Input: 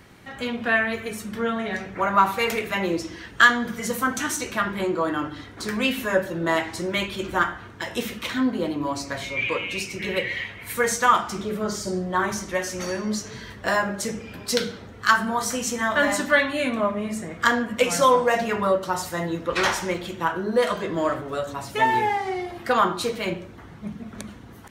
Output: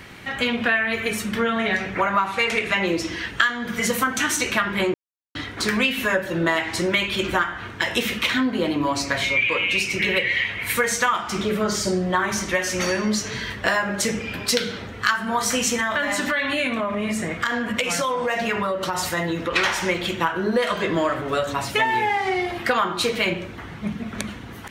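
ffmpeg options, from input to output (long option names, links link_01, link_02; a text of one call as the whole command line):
ffmpeg -i in.wav -filter_complex "[0:a]asettb=1/sr,asplit=3[link_01][link_02][link_03];[link_01]atrim=end=2.264[link_04];[link_02]atrim=start=2.26:end=2.87,asetpts=PTS-STARTPTS,afade=type=in:duration=0.004:curve=qsin,afade=type=out:start_time=0.606:duration=0.004:curve=qsin,lowpass=frequency=9900:width=0.5412,lowpass=frequency=9900:width=1.3066[link_05];[link_03]atrim=start=2.866[link_06];[link_04][link_05]acrossfade=duration=0.004:curve1=hsin:curve2=qsin[link_07];[link_07][link_06]acrossfade=duration=0.004:curve1=qsin:curve2=hsin,asettb=1/sr,asplit=3[link_08][link_09][link_10];[link_08]atrim=end=15.764[link_11];[link_09]atrim=start=15.76:end=19.54,asetpts=PTS-STARTPTS,afade=type=in:duration=0.004:curve=qsin,afade=type=out:start_time=3.776:duration=0.004:curve=qsin,acompressor=threshold=-27dB:ratio=6:attack=3.2:release=140:knee=1:detection=peak[link_12];[link_10]atrim=start=19.536[link_13];[link_11][link_12]acrossfade=duration=0.004:curve1=hsin:curve2=qsin[link_14];[link_14][link_13]acrossfade=duration=0.004:curve1=qsin:curve2=hsin,asplit=3[link_15][link_16][link_17];[link_15]atrim=end=4.94,asetpts=PTS-STARTPTS,afade=type=out:start_time=4.936:duration=0.004:curve=hsin[link_18];[link_16]atrim=start=4.94:end=5.35,asetpts=PTS-STARTPTS,volume=0[link_19];[link_17]atrim=start=5.35,asetpts=PTS-STARTPTS,afade=type=in:duration=0.004:curve=hsin[link_20];[link_18][link_19][link_20]concat=n=3:v=0:a=1,equalizer=frequency=2500:width=0.88:gain=7,acompressor=threshold=-24dB:ratio=6,volume=6dB" out.wav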